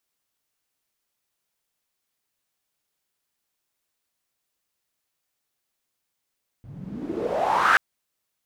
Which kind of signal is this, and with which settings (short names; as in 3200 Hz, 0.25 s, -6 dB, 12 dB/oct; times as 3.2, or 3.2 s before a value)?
swept filtered noise pink, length 1.13 s bandpass, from 110 Hz, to 1600 Hz, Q 6.6, exponential, gain ramp +23 dB